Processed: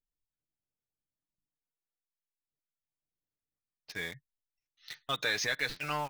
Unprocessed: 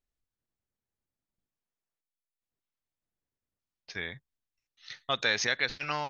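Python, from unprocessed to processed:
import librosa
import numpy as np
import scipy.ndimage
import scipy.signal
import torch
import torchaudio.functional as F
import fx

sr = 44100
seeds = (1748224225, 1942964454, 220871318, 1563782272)

p1 = fx.spec_gate(x, sr, threshold_db=-25, keep='strong')
p2 = p1 + 0.4 * np.pad(p1, (int(6.6 * sr / 1000.0), 0))[:len(p1)]
p3 = fx.quant_companded(p2, sr, bits=2)
p4 = p2 + F.gain(torch.from_numpy(p3), -10.5).numpy()
y = F.gain(torch.from_numpy(p4), -6.0).numpy()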